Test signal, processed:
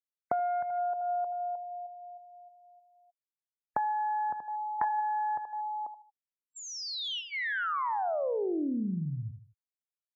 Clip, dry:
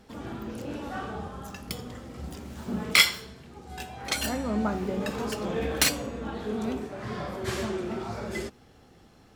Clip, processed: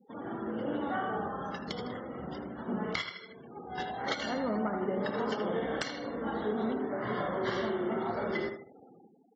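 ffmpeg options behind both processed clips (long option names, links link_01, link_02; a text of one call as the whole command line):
ffmpeg -i in.wav -af "dynaudnorm=framelen=100:gausssize=9:maxgain=4.5dB,lowshelf=frequency=180:gain=-11,aeval=exprs='0.841*(cos(1*acos(clip(val(0)/0.841,-1,1)))-cos(1*PI/2))+0.168*(cos(3*acos(clip(val(0)/0.841,-1,1)))-cos(3*PI/2))+0.0841*(cos(4*acos(clip(val(0)/0.841,-1,1)))-cos(4*PI/2))':channel_layout=same,aecho=1:1:78|156|234|312:0.376|0.132|0.046|0.0161,acompressor=threshold=-36dB:ratio=8,highpass=130,lowpass=5200,highshelf=frequency=2500:gain=-7,afftfilt=real='re*gte(hypot(re,im),0.00178)':imag='im*gte(hypot(re,im),0.00178)':win_size=1024:overlap=0.75,asuperstop=centerf=2500:order=8:qfactor=4.6,volume=9dB" -ar 32000 -c:a aac -b:a 24k out.aac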